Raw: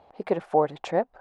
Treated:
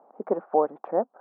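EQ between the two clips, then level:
Chebyshev band-pass filter 220–1,300 Hz, order 3
0.0 dB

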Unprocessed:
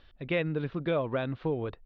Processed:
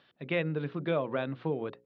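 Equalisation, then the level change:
Chebyshev high-pass filter 150 Hz, order 3
high-frequency loss of the air 53 metres
mains-hum notches 60/120/180/240/300/360/420/480/540 Hz
0.0 dB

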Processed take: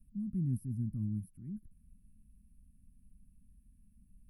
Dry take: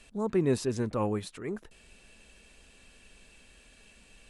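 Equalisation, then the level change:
inverse Chebyshev band-stop filter 410–7,500 Hz, stop band 40 dB
notch filter 530 Hz, Q 16
0.0 dB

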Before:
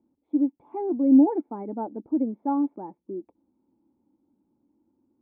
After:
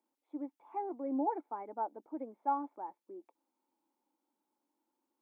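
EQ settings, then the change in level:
high-pass filter 940 Hz 12 dB per octave
+2.0 dB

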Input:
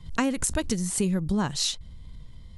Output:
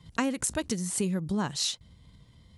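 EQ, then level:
high-pass filter 54 Hz
low-shelf EQ 75 Hz −10 dB
−2.5 dB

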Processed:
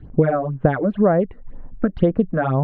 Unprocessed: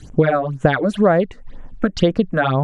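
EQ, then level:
low-pass filter 1,300 Hz 6 dB per octave
high-frequency loss of the air 470 metres
0.0 dB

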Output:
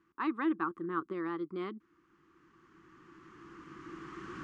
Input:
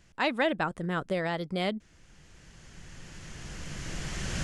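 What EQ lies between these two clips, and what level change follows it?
pair of resonant band-passes 620 Hz, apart 1.8 octaves
+5.0 dB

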